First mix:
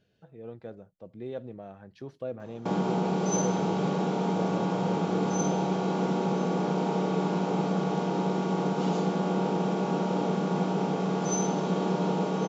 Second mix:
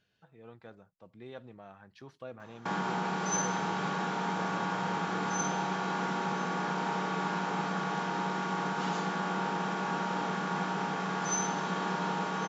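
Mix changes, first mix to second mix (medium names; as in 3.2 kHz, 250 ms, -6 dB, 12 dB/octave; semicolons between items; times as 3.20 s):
background: add peaking EQ 1.7 kHz +10 dB 0.45 oct; master: add resonant low shelf 750 Hz -8 dB, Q 1.5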